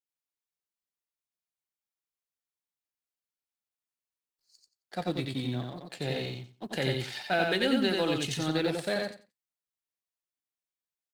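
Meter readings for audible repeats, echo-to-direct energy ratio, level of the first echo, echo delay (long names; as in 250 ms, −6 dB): 3, −3.0 dB, −3.0 dB, 89 ms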